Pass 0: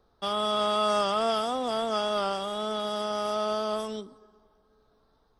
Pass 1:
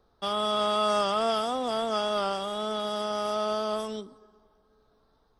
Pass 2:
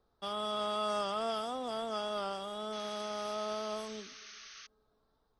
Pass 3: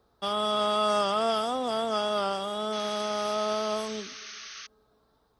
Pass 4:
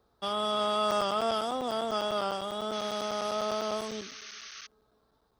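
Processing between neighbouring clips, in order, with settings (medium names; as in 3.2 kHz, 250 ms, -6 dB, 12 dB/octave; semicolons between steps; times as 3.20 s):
no audible change
painted sound noise, 2.72–4.67 s, 1.1–6.5 kHz -43 dBFS; trim -8.5 dB
high-pass 46 Hz; trim +8.5 dB
crackling interface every 0.10 s, samples 256, zero, from 0.91 s; trim -2.5 dB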